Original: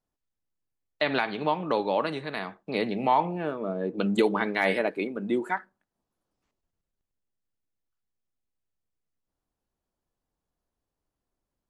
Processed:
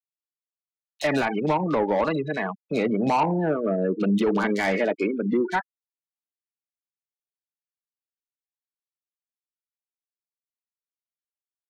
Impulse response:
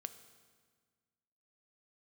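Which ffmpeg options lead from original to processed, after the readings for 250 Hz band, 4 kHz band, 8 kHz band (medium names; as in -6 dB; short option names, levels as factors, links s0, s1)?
+6.0 dB, -2.0 dB, no reading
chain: -filter_complex "[0:a]afftfilt=real='re*gte(hypot(re,im),0.0398)':imag='im*gte(hypot(re,im),0.0398)':win_size=1024:overlap=0.75,acrossover=split=310[s0][s1];[s1]asoftclip=type=tanh:threshold=0.0562[s2];[s0][s2]amix=inputs=2:normalize=0,acompressor=mode=upward:threshold=0.0126:ratio=2.5,acrossover=split=3600[s3][s4];[s3]adelay=30[s5];[s5][s4]amix=inputs=2:normalize=0,alimiter=limit=0.0668:level=0:latency=1:release=102,volume=2.66"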